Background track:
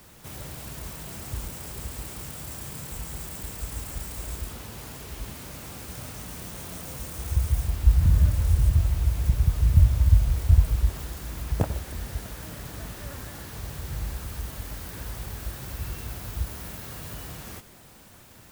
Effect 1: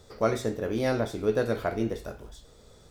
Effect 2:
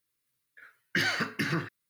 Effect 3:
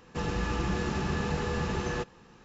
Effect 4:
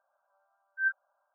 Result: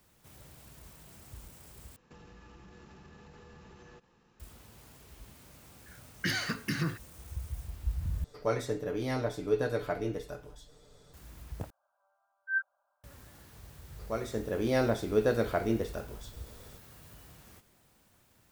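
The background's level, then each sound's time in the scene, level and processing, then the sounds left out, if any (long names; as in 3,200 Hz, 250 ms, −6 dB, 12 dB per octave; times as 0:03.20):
background track −15 dB
0:01.96: overwrite with 3 −11.5 dB + downward compressor, threshold −39 dBFS
0:05.29: mix in 2 −6 dB + bass and treble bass +8 dB, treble +7 dB
0:08.24: overwrite with 1 −5.5 dB + comb filter 6.8 ms, depth 59%
0:11.70: overwrite with 4 −2 dB
0:13.89: mix in 1 −11 dB + automatic gain control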